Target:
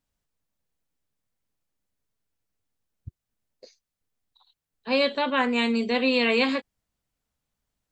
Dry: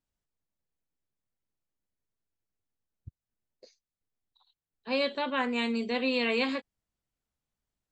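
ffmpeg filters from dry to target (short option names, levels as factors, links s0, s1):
-af "bandreject=f=360:w=12,volume=2"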